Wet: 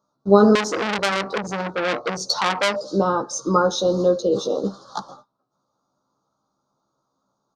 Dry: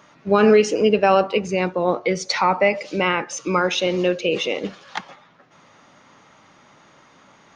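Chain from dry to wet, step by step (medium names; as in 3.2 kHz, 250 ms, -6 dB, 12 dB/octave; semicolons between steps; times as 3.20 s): gate -46 dBFS, range -23 dB; Chebyshev band-stop 1.3–4 kHz, order 3; doubling 15 ms -4.5 dB; 0.55–2.76 s: transformer saturation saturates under 3.9 kHz; trim +1.5 dB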